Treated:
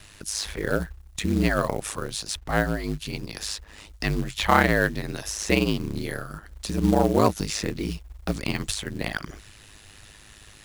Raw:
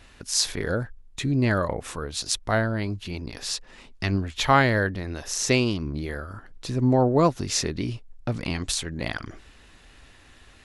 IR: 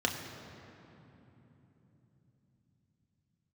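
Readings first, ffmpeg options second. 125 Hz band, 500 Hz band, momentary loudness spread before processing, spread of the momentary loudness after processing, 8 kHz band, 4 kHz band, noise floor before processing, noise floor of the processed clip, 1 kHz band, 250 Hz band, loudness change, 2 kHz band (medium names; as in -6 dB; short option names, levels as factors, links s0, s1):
-2.5 dB, -0.5 dB, 13 LU, 13 LU, -3.5 dB, -2.0 dB, -52 dBFS, -50 dBFS, 0.0 dB, +0.5 dB, -0.5 dB, +1.0 dB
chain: -filter_complex "[0:a]acrossover=split=240|2900[s0][s1][s2];[s2]acompressor=threshold=0.00794:ratio=6[s3];[s0][s1][s3]amix=inputs=3:normalize=0,aeval=exprs='val(0)*sin(2*PI*52*n/s)':c=same,asoftclip=type=tanh:threshold=0.473,crystalizer=i=2.5:c=0,acrusher=bits=5:mode=log:mix=0:aa=0.000001,volume=1.41"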